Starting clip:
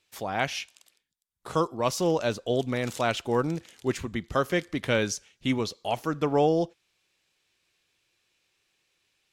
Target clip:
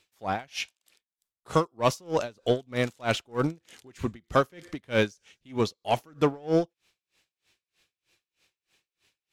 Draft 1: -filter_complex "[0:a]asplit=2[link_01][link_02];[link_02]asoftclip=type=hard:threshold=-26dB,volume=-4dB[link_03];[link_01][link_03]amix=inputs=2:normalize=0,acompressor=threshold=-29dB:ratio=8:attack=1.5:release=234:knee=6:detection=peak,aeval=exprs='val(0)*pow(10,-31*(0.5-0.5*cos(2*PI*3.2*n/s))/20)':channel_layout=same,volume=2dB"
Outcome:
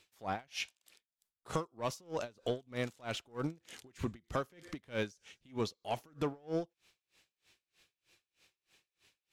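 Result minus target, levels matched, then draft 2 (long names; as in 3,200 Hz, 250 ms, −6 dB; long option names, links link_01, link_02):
downward compressor: peak gain reduction +15 dB
-filter_complex "[0:a]asplit=2[link_01][link_02];[link_02]asoftclip=type=hard:threshold=-26dB,volume=-4dB[link_03];[link_01][link_03]amix=inputs=2:normalize=0,aeval=exprs='val(0)*pow(10,-31*(0.5-0.5*cos(2*PI*3.2*n/s))/20)':channel_layout=same,volume=2dB"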